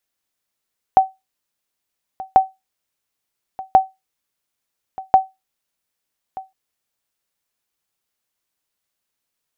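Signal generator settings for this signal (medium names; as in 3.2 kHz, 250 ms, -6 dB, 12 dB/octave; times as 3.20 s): sonar ping 763 Hz, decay 0.20 s, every 1.39 s, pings 4, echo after 1.23 s, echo -19.5 dB -2 dBFS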